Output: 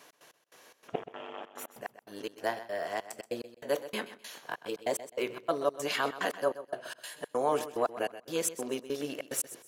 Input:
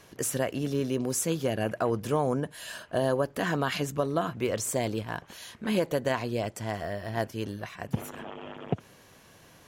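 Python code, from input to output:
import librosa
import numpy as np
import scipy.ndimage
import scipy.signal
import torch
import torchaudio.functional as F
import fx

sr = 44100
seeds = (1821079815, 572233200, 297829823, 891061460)

y = x[::-1].copy()
y = scipy.signal.sosfilt(scipy.signal.butter(2, 410.0, 'highpass', fs=sr, output='sos'), y)
y = fx.room_shoebox(y, sr, seeds[0], volume_m3=150.0, walls='furnished', distance_m=0.39)
y = fx.step_gate(y, sr, bpm=145, pattern='x.x..xx.xx.xxx.', floor_db=-60.0, edge_ms=4.5)
y = fx.echo_feedback(y, sr, ms=128, feedback_pct=25, wet_db=-14.0)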